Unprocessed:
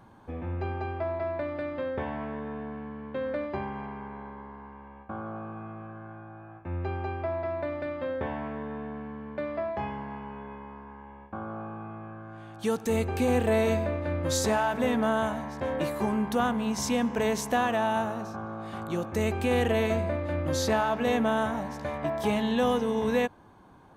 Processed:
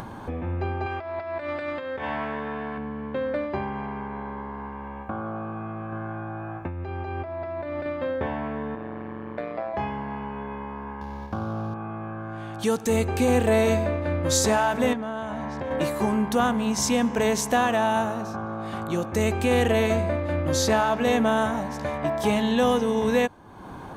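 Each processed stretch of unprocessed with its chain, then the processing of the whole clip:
0.86–2.78 negative-ratio compressor -34 dBFS, ratio -0.5 + tilt shelf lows -6 dB, about 680 Hz
5.92–7.86 bell 12000 Hz -4 dB 0.63 oct + negative-ratio compressor -37 dBFS
8.75–9.74 HPF 170 Hz + AM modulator 120 Hz, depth 90%
11.01–11.74 median filter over 15 samples + bell 100 Hz +8.5 dB 1.9 oct + mismatched tape noise reduction encoder only
14.93–15.71 compressor 12:1, threshold -31 dBFS + air absorption 63 m
whole clip: dynamic EQ 7200 Hz, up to +4 dB, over -52 dBFS, Q 1; upward compressor, threshold -31 dBFS; gain +4 dB

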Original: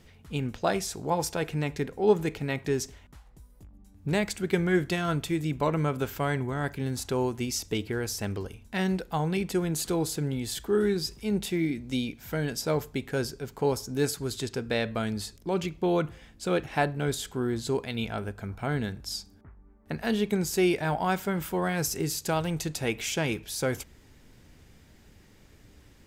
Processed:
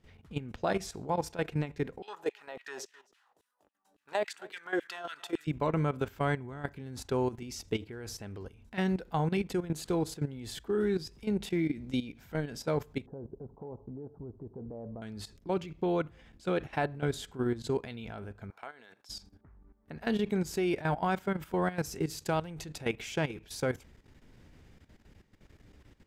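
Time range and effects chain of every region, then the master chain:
2.02–5.47 LFO high-pass saw down 3.6 Hz 430–2900 Hz + bell 2200 Hz -10 dB 0.2 oct + echo 0.261 s -21 dB
13.06–15.02 steep low-pass 950 Hz + compressor 3:1, threshold -34 dBFS
18.5–19.09 HPF 700 Hz + compressor 3:1, threshold -38 dBFS
whole clip: high shelf 5300 Hz -11 dB; level quantiser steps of 14 dB

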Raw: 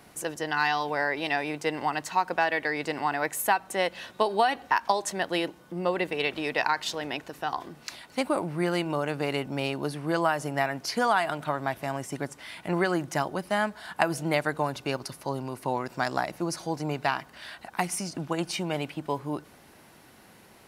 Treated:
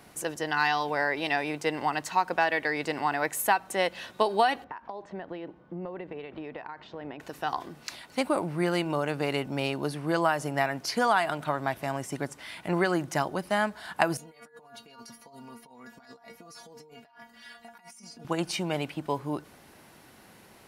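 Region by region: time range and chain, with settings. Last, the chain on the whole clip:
4.64–7.2 compressor, threshold -31 dBFS + tape spacing loss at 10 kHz 44 dB
14.17–18.25 metallic resonator 230 Hz, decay 0.22 s, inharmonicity 0.002 + negative-ratio compressor -51 dBFS
whole clip: dry

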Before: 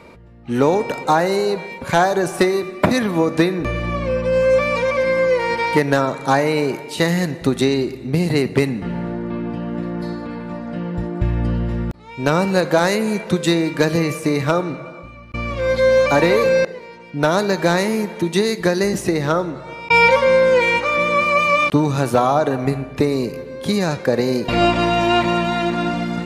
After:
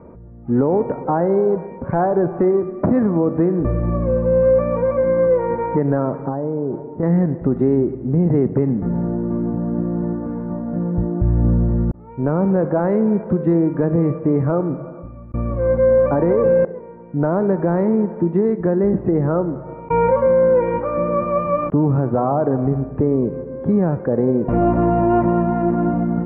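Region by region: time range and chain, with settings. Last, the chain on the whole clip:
6.28–7.03 compressor 3:1, threshold -21 dBFS + Gaussian blur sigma 5.8 samples
whole clip: LPF 1600 Hz 24 dB/oct; tilt shelf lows +10 dB, about 1200 Hz; limiter -3 dBFS; gain -5 dB

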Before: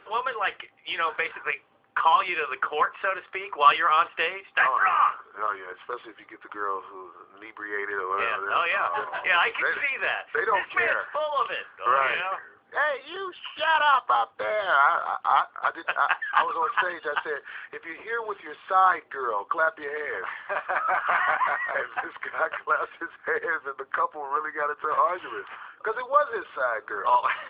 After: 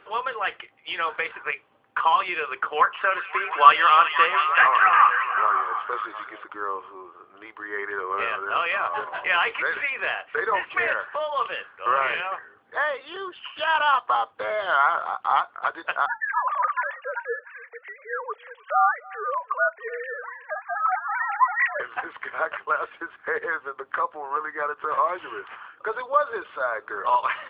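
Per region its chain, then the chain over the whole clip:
2.75–6.44 bell 1300 Hz +5 dB 1.6 oct + delay with a stepping band-pass 0.179 s, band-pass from 3700 Hz, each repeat -0.7 oct, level -1.5 dB
16.06–21.8 sine-wave speech + notches 50/100/150/200/250/300 Hz + echo 0.296 s -23 dB
whole clip: dry

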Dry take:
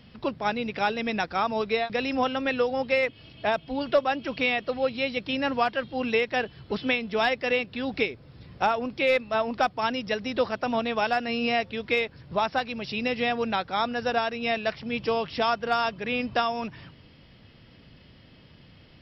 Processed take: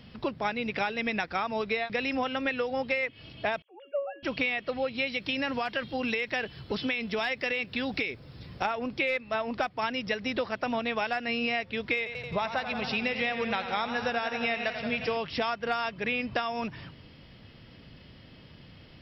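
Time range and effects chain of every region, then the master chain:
3.62–4.23 sine-wave speech + resonator 560 Hz, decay 0.46 s, mix 80%
5.07–8.65 high shelf 4500 Hz +8.5 dB + compressor, threshold -25 dBFS
11.97–15.17 bell 300 Hz -8.5 dB 0.26 oct + warbling echo 88 ms, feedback 76%, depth 66 cents, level -11.5 dB
whole clip: dynamic EQ 2100 Hz, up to +7 dB, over -41 dBFS, Q 1.7; compressor, threshold -28 dBFS; gain +1.5 dB

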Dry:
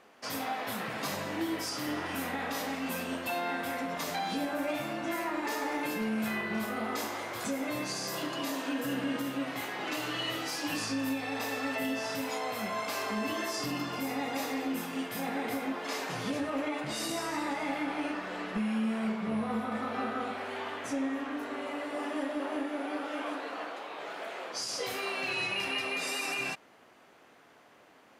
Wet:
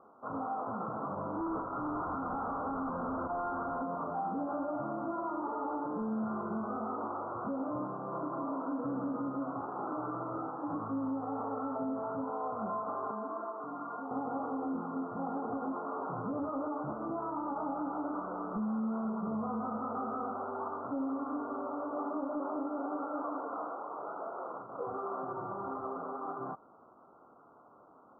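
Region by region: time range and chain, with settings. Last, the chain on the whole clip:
1.38–3.82 infinite clipping + bell 3400 Hz +7 dB 2.7 oct
13.11–14.11 HPF 870 Hz 6 dB/oct + comb 4.3 ms, depth 36%
whole clip: Chebyshev low-pass 1400 Hz, order 8; bell 1100 Hz +3.5 dB 0.77 oct; limiter -28 dBFS

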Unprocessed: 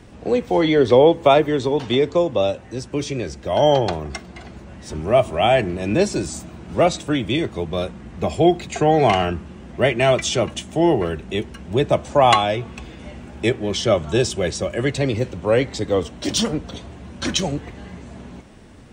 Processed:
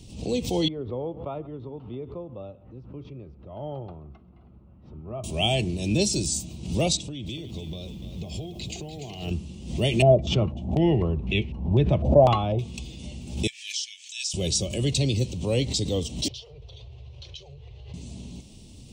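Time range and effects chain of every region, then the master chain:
0.68–5.24 ladder low-pass 1400 Hz, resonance 75% + echo 0.131 s -22.5 dB
6.97–9.31 compressor 12:1, threshold -27 dBFS + air absorption 95 m + lo-fi delay 0.293 s, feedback 55%, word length 10-bit, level -10 dB
10.02–12.59 low shelf 150 Hz +6.5 dB + stepped low-pass 4 Hz 630–2300 Hz
13.47–14.34 rippled Chebyshev high-pass 1700 Hz, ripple 6 dB + tilt -2.5 dB/oct
16.28–17.94 elliptic band-stop 130–400 Hz + air absorption 290 m + compressor 10:1, threshold -38 dBFS
whole clip: EQ curve 140 Hz 0 dB, 970 Hz -15 dB, 1600 Hz -29 dB, 2700 Hz -1 dB, 4300 Hz +5 dB; backwards sustainer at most 88 dB/s

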